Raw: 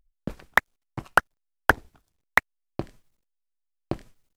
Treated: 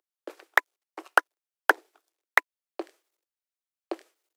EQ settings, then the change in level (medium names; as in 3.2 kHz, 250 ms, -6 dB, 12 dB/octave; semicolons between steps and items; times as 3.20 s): steep high-pass 320 Hz 72 dB/octave; band-stop 1 kHz, Q 22; -1.0 dB